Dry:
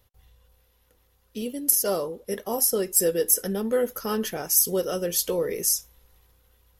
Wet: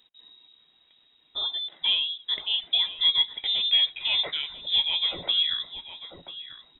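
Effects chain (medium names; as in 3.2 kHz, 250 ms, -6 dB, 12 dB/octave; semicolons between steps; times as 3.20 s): frequency inversion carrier 3.8 kHz; echo from a far wall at 170 m, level -7 dB; trim +1.5 dB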